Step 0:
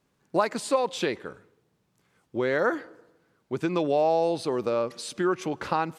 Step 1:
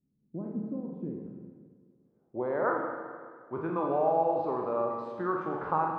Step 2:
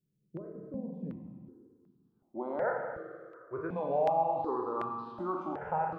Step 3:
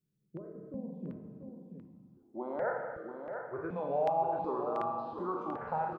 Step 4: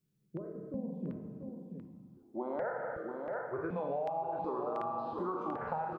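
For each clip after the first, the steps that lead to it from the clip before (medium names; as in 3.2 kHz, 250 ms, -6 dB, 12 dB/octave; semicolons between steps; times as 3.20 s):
spectral sustain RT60 0.50 s; low-pass sweep 220 Hz -> 1.1 kHz, 1.60–2.66 s; Schroeder reverb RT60 1.8 s, DRR 2 dB; trim -9 dB
stepped phaser 2.7 Hz 250–2100 Hz
delay 687 ms -7.5 dB; trim -2 dB
compression 10:1, threshold -35 dBFS, peak gain reduction 10.5 dB; trim +3 dB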